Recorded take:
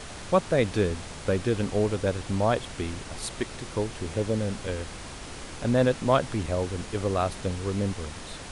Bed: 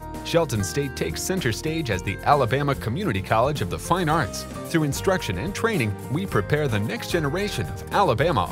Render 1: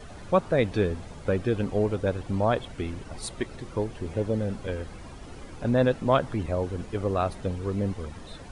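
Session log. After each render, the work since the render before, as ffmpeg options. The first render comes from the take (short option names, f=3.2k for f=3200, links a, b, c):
-af "afftdn=nr=12:nf=-40"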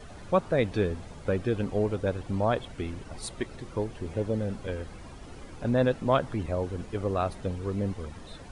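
-af "volume=-2dB"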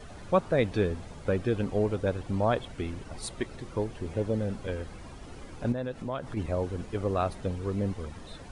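-filter_complex "[0:a]asettb=1/sr,asplit=3[a][b][c];[a]atrim=end=5.724[d];[b]atrim=start=5.72:end=6.37,asetpts=PTS-STARTPTS,afade=t=in:d=0.004:c=qsin,afade=t=out:st=0.646:d=0.004:c=qsin,acompressor=threshold=-34dB:ratio=2.5:attack=3.2:release=140:knee=1:detection=peak[e];[c]atrim=start=6.366[f];[d][e]acrossfade=d=0.004:c1=hsin:c2=qsin[g];[g][f]acrossfade=d=0.004:c1=qsin:c2=hsin"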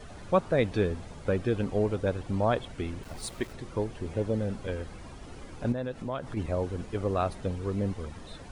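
-filter_complex "[0:a]asplit=3[a][b][c];[a]afade=t=out:st=3.02:d=0.02[d];[b]aeval=exprs='val(0)*gte(abs(val(0)),0.00531)':c=same,afade=t=in:st=3.02:d=0.02,afade=t=out:st=3.52:d=0.02[e];[c]afade=t=in:st=3.52:d=0.02[f];[d][e][f]amix=inputs=3:normalize=0"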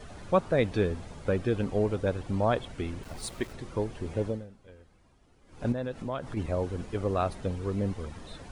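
-filter_complex "[0:a]asplit=3[a][b][c];[a]atrim=end=4.52,asetpts=PTS-STARTPTS,afade=t=out:st=4.27:d=0.25:c=qua:silence=0.11885[d];[b]atrim=start=4.52:end=5.4,asetpts=PTS-STARTPTS,volume=-18.5dB[e];[c]atrim=start=5.4,asetpts=PTS-STARTPTS,afade=t=in:d=0.25:c=qua:silence=0.11885[f];[d][e][f]concat=n=3:v=0:a=1"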